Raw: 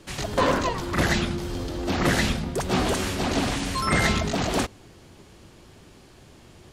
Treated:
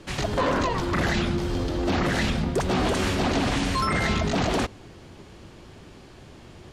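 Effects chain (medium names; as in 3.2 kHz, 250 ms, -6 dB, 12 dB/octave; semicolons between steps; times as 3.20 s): treble shelf 7.7 kHz -12 dB; peak limiter -19 dBFS, peak gain reduction 9 dB; trim +4 dB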